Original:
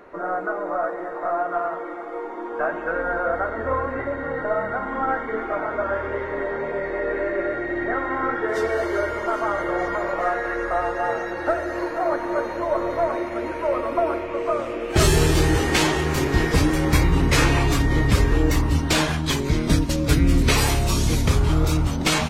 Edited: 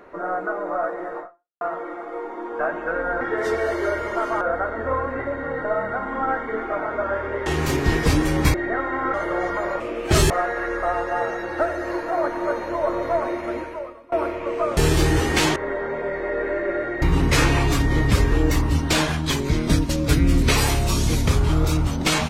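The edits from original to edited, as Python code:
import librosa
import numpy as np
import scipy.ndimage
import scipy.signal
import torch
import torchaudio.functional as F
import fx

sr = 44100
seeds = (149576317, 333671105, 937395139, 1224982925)

y = fx.edit(x, sr, fx.fade_out_span(start_s=1.2, length_s=0.41, curve='exp'),
    fx.swap(start_s=6.26, length_s=1.46, other_s=15.94, other_length_s=1.08),
    fx.move(start_s=8.32, length_s=1.2, to_s=3.21),
    fx.fade_out_to(start_s=13.43, length_s=0.57, curve='qua', floor_db=-24.0),
    fx.move(start_s=14.65, length_s=0.5, to_s=10.18), tone=tone)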